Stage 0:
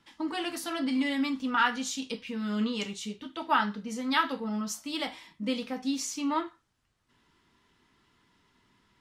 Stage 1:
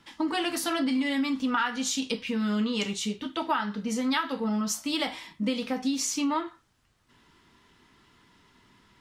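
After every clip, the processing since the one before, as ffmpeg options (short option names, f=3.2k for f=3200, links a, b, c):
-af "acompressor=threshold=-31dB:ratio=6,volume=7dB"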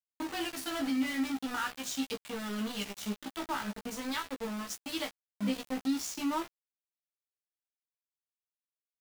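-filter_complex "[0:a]flanger=delay=6.4:depth=9.1:regen=48:speed=0.44:shape=sinusoidal,aeval=exprs='val(0)*gte(abs(val(0)),0.0224)':c=same,asplit=2[a][b];[b]adelay=15,volume=-5dB[c];[a][c]amix=inputs=2:normalize=0,volume=-4.5dB"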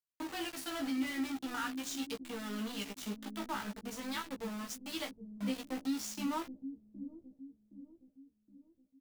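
-filter_complex "[0:a]acrossover=split=360|2600[a][b][c];[a]aecho=1:1:768|1536|2304|3072|3840:0.501|0.216|0.0927|0.0398|0.0171[d];[c]acrusher=bits=2:mode=log:mix=0:aa=0.000001[e];[d][b][e]amix=inputs=3:normalize=0,volume=-4dB"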